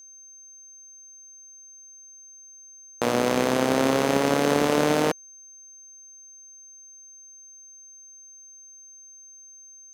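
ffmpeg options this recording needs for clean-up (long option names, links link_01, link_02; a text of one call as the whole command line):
ffmpeg -i in.wav -af "bandreject=frequency=6300:width=30" out.wav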